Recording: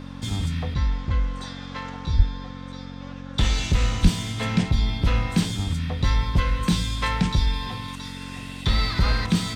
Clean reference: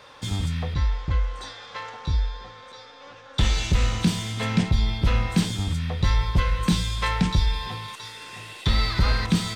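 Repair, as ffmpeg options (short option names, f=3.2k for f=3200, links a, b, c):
-filter_complex "[0:a]bandreject=f=45.9:t=h:w=4,bandreject=f=91.8:t=h:w=4,bandreject=f=137.7:t=h:w=4,bandreject=f=183.6:t=h:w=4,bandreject=f=229.5:t=h:w=4,bandreject=f=275.4:t=h:w=4,asplit=3[a][b][c];[a]afade=t=out:st=2.16:d=0.02[d];[b]highpass=f=140:w=0.5412,highpass=f=140:w=1.3066,afade=t=in:st=2.16:d=0.02,afade=t=out:st=2.28:d=0.02[e];[c]afade=t=in:st=2.28:d=0.02[f];[d][e][f]amix=inputs=3:normalize=0,asplit=3[g][h][i];[g]afade=t=out:st=4.02:d=0.02[j];[h]highpass=f=140:w=0.5412,highpass=f=140:w=1.3066,afade=t=in:st=4.02:d=0.02,afade=t=out:st=4.14:d=0.02[k];[i]afade=t=in:st=4.14:d=0.02[l];[j][k][l]amix=inputs=3:normalize=0"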